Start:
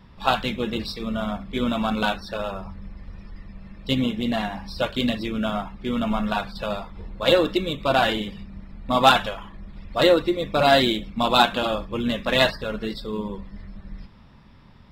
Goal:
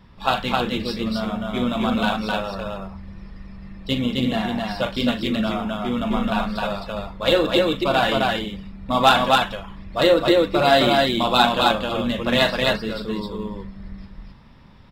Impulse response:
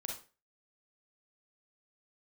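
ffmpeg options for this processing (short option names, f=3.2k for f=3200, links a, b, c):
-af "aecho=1:1:40.82|262.4:0.316|0.794"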